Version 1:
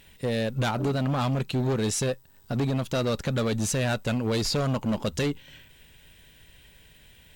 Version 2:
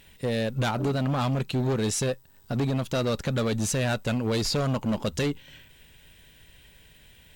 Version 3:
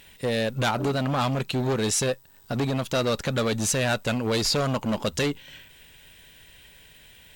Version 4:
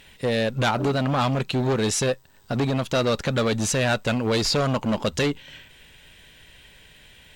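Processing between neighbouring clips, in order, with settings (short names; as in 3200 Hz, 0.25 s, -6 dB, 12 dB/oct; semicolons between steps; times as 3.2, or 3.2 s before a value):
nothing audible
low shelf 350 Hz -6.5 dB; gain +4.5 dB
high shelf 9900 Hz -11 dB; gain +2.5 dB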